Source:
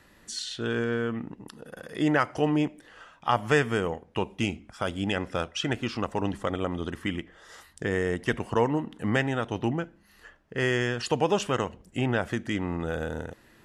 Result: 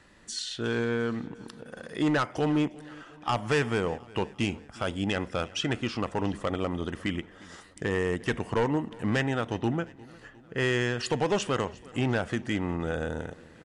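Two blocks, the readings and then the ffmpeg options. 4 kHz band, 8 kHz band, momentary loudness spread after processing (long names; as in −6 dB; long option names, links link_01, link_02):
0.0 dB, 0.0 dB, 13 LU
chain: -filter_complex "[0:a]asoftclip=type=hard:threshold=-20dB,asplit=2[link_01][link_02];[link_02]aecho=0:1:355|710|1065|1420:0.0794|0.0453|0.0258|0.0147[link_03];[link_01][link_03]amix=inputs=2:normalize=0,aresample=22050,aresample=44100"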